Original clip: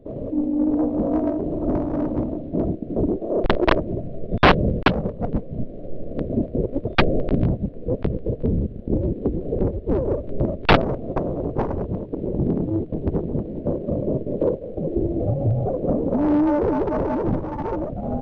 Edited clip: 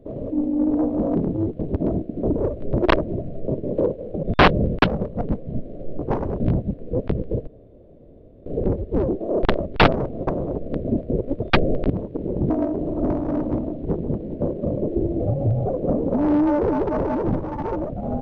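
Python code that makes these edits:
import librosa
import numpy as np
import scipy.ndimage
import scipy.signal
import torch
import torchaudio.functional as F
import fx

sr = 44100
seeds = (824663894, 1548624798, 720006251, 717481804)

y = fx.edit(x, sr, fx.swap(start_s=1.15, length_s=1.34, other_s=12.48, other_length_s=0.61),
    fx.swap(start_s=3.09, length_s=0.52, other_s=10.03, other_length_s=0.46),
    fx.swap(start_s=6.03, length_s=1.32, other_s=11.47, other_length_s=0.41),
    fx.room_tone_fill(start_s=8.42, length_s=0.99),
    fx.move(start_s=14.11, length_s=0.75, to_s=4.27), tone=tone)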